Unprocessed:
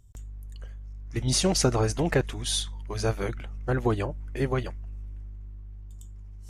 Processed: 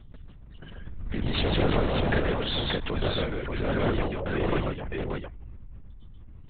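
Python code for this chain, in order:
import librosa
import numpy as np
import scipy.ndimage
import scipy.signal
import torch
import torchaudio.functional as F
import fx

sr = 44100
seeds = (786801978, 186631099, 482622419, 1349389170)

p1 = fx.low_shelf(x, sr, hz=110.0, db=-6.0)
p2 = (np.mod(10.0 ** (22.0 / 20.0) * p1 + 1.0, 2.0) - 1.0) / 10.0 ** (22.0 / 20.0)
p3 = p1 + F.gain(torch.from_numpy(p2), -6.5).numpy()
p4 = fx.echo_multitap(p3, sr, ms=(128, 133, 161, 582), db=(-9.5, -3.0, -15.0, -3.5))
p5 = fx.lpc_vocoder(p4, sr, seeds[0], excitation='whisper', order=10)
p6 = fx.pre_swell(p5, sr, db_per_s=30.0)
y = F.gain(torch.from_numpy(p6), -3.0).numpy()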